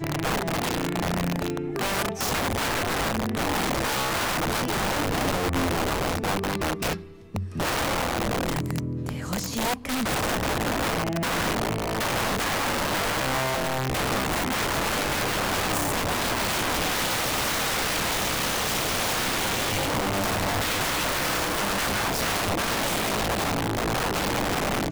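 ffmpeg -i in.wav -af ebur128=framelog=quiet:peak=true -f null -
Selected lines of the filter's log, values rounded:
Integrated loudness:
  I:         -25.4 LUFS
  Threshold: -35.4 LUFS
Loudness range:
  LRA:         2.6 LU
  Threshold: -45.4 LUFS
  LRA low:   -26.9 LUFS
  LRA high:  -24.3 LUFS
True peak:
  Peak:      -16.9 dBFS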